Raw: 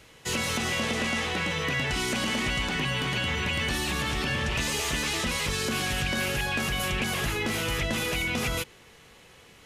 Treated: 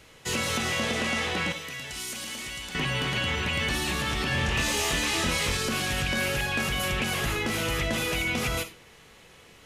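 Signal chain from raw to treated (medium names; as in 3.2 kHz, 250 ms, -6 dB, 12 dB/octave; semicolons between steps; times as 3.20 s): 1.52–2.75 s: pre-emphasis filter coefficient 0.8; 4.29–5.57 s: doubling 24 ms -3.5 dB; reverberation RT60 0.35 s, pre-delay 10 ms, DRR 8.5 dB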